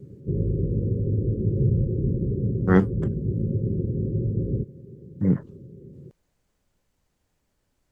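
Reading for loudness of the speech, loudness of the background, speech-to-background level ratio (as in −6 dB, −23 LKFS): −24.0 LKFS, −26.0 LKFS, 2.0 dB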